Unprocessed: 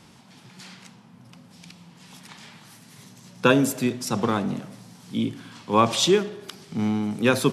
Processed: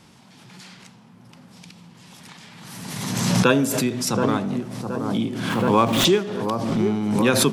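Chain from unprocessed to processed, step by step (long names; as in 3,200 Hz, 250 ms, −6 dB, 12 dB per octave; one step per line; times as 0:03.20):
0:05.49–0:06.05: running median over 9 samples
delay with a low-pass on its return 724 ms, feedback 46%, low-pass 1,100 Hz, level −6 dB
background raised ahead of every attack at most 32 dB per second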